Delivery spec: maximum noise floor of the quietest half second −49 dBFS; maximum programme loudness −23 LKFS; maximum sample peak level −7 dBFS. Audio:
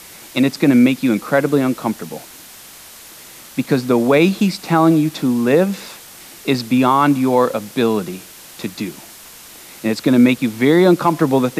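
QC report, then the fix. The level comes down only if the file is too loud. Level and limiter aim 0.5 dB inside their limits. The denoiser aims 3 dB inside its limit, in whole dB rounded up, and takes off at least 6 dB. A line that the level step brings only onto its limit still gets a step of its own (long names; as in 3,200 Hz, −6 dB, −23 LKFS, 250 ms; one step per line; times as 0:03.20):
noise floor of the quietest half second −39 dBFS: out of spec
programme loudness −16.0 LKFS: out of spec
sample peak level −3.0 dBFS: out of spec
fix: broadband denoise 6 dB, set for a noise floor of −39 dBFS
level −7.5 dB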